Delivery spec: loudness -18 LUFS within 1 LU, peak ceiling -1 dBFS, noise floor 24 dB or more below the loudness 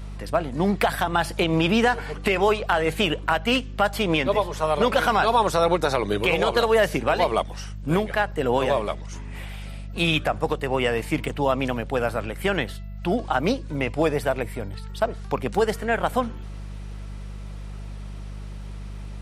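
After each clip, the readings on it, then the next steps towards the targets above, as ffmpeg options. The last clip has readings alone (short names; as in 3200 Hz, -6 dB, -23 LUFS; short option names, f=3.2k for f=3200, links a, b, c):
hum 50 Hz; harmonics up to 200 Hz; hum level -32 dBFS; loudness -23.5 LUFS; peak -5.0 dBFS; loudness target -18.0 LUFS
-> -af "bandreject=f=50:t=h:w=4,bandreject=f=100:t=h:w=4,bandreject=f=150:t=h:w=4,bandreject=f=200:t=h:w=4"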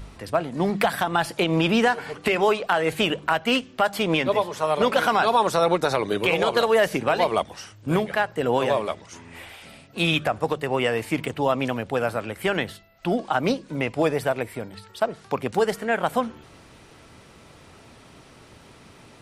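hum none; loudness -23.5 LUFS; peak -5.0 dBFS; loudness target -18.0 LUFS
-> -af "volume=5.5dB,alimiter=limit=-1dB:level=0:latency=1"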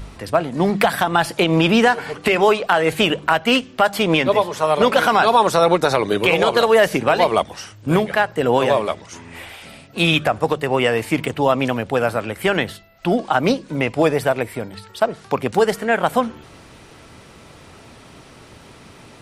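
loudness -18.0 LUFS; peak -1.0 dBFS; noise floor -45 dBFS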